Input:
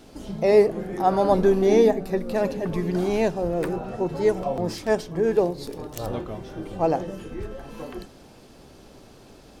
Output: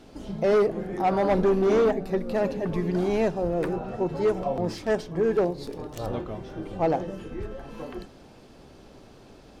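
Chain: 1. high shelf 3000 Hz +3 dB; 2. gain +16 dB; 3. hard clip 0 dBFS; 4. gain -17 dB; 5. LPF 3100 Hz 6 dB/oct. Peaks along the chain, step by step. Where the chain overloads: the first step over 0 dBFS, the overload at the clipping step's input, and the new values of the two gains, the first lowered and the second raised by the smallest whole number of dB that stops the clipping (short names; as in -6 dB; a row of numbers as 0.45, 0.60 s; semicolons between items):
-6.0, +10.0, 0.0, -17.0, -17.0 dBFS; step 2, 10.0 dB; step 2 +6 dB, step 4 -7 dB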